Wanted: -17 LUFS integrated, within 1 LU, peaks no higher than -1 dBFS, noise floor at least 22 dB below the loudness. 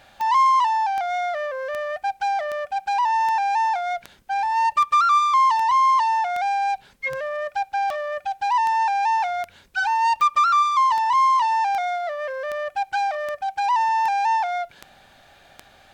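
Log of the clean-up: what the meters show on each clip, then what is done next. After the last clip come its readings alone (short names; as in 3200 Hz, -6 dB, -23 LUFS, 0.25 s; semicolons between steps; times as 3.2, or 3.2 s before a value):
clicks 21; loudness -21.5 LUFS; peak -10.0 dBFS; loudness target -17.0 LUFS
-> de-click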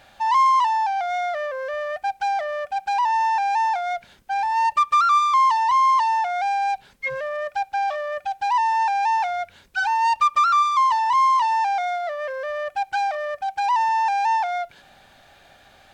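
clicks 0; loudness -21.5 LUFS; peak -10.5 dBFS; loudness target -17.0 LUFS
-> gain +4.5 dB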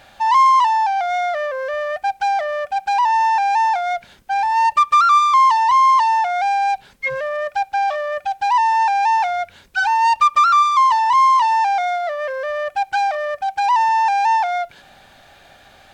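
loudness -17.0 LUFS; peak -6.0 dBFS; noise floor -49 dBFS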